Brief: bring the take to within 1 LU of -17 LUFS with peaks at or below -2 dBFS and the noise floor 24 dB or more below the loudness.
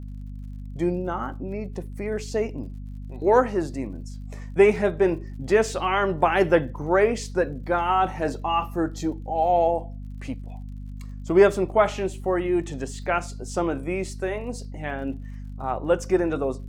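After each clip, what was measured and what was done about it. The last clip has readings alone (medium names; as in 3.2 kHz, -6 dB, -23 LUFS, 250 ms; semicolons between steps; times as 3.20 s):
tick rate 50 per s; hum 50 Hz; highest harmonic 250 Hz; hum level -33 dBFS; loudness -24.0 LUFS; peak level -5.0 dBFS; loudness target -17.0 LUFS
-> de-click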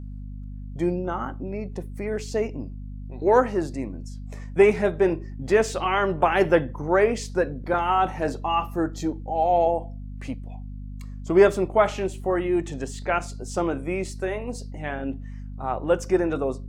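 tick rate 0.060 per s; hum 50 Hz; highest harmonic 250 Hz; hum level -33 dBFS
-> hum notches 50/100/150/200/250 Hz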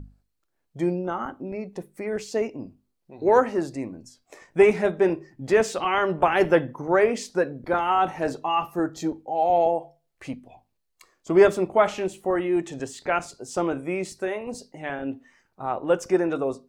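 hum not found; loudness -24.5 LUFS; peak level -5.0 dBFS; loudness target -17.0 LUFS
-> trim +7.5 dB; peak limiter -2 dBFS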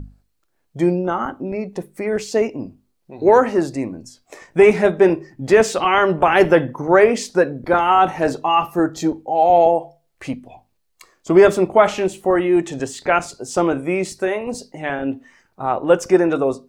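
loudness -17.5 LUFS; peak level -2.0 dBFS; noise floor -67 dBFS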